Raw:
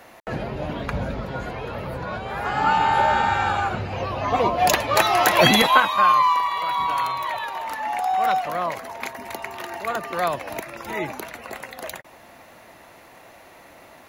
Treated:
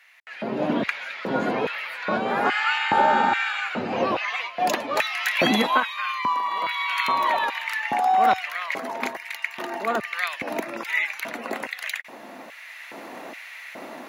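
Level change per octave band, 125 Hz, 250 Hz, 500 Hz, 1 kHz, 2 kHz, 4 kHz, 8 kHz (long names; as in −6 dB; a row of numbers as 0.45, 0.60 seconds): −9.5, +0.5, −2.0, −3.0, +1.0, −3.5, −8.0 decibels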